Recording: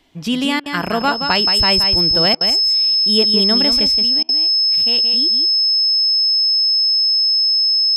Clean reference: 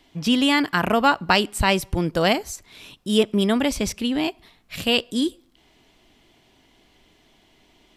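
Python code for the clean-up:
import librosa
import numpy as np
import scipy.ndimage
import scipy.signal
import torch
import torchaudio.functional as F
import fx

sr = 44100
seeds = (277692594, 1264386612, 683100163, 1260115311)

y = fx.notch(x, sr, hz=5200.0, q=30.0)
y = fx.fix_interpolate(y, sr, at_s=(0.6, 2.35, 4.23), length_ms=57.0)
y = fx.fix_echo_inverse(y, sr, delay_ms=174, level_db=-7.0)
y = fx.gain(y, sr, db=fx.steps((0.0, 0.0), (3.87, 7.5)))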